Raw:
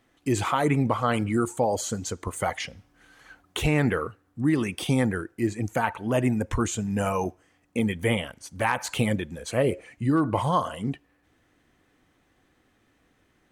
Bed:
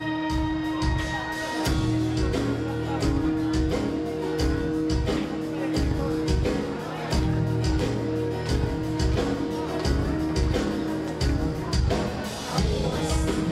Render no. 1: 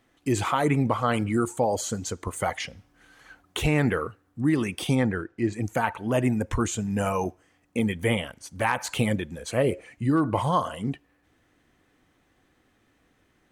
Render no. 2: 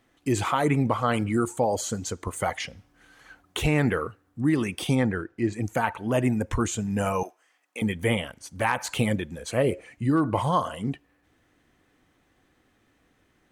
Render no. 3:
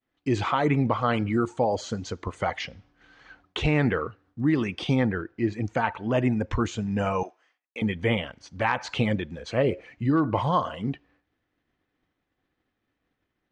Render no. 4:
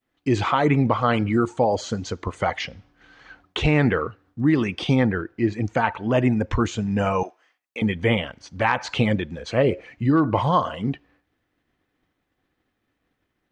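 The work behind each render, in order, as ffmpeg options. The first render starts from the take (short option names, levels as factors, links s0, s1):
-filter_complex "[0:a]asettb=1/sr,asplit=3[s0][s1][s2];[s0]atrim=end=4.954[s3];[s1]atrim=start=4.95:end=5.53,asetpts=PTS-STARTPTS,afade=t=in:d=0.004:c=qsin,afade=t=out:st=0.576:d=0.004:c=qsin,lowpass=5000[s4];[s2]atrim=start=5.526[s5];[s3][s4]acrossfade=d=0.004:c1=hsin:c2=qsin[s6];[s6][s5]acrossfade=d=0.004:c1=qsin:c2=hsin"
-filter_complex "[0:a]asettb=1/sr,asplit=3[s0][s1][s2];[s0]atrim=end=7.234[s3];[s1]atrim=start=7.23:end=7.82,asetpts=PTS-STARTPTS,afade=t=in:d=0.004:c=qsin,afade=t=out:st=0.586:d=0.004:c=qsin,highpass=780[s4];[s2]atrim=start=7.816[s5];[s3][s4]acrossfade=d=0.004:c1=hsin:c2=qsin[s6];[s6][s5]acrossfade=d=0.004:c1=qsin:c2=hsin"
-af "lowpass=f=5200:w=0.5412,lowpass=f=5200:w=1.3066,agate=range=0.0224:threshold=0.00158:ratio=3:detection=peak"
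-af "volume=1.58"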